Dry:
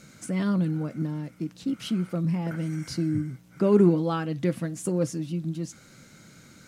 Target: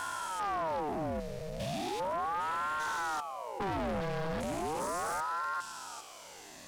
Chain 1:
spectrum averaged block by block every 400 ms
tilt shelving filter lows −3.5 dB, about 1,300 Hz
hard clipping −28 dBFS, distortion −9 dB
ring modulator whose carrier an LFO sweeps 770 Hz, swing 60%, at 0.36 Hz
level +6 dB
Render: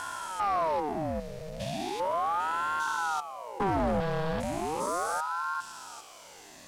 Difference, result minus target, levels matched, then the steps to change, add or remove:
hard clipping: distortion −5 dB
change: hard clipping −35.5 dBFS, distortion −5 dB

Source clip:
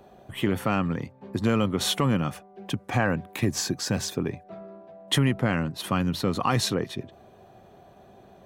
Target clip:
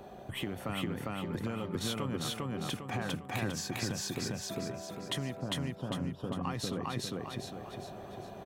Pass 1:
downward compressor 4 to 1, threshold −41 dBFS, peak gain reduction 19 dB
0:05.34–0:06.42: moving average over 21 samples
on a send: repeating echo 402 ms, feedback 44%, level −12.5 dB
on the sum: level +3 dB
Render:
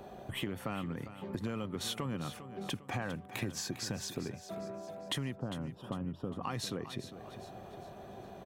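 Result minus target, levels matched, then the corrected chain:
echo-to-direct −12 dB
downward compressor 4 to 1, threshold −41 dBFS, peak gain reduction 19 dB
0:05.34–0:06.42: moving average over 21 samples
on a send: repeating echo 402 ms, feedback 44%, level −0.5 dB
on the sum: level +3 dB

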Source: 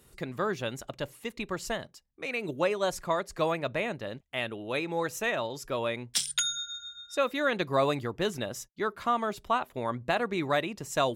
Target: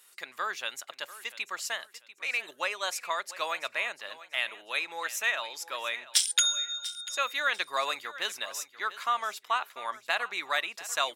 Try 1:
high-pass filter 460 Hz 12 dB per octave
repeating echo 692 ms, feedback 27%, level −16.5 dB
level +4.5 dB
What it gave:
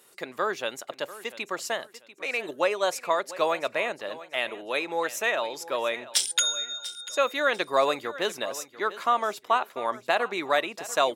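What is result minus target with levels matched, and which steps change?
500 Hz band +9.5 dB
change: high-pass filter 1,300 Hz 12 dB per octave

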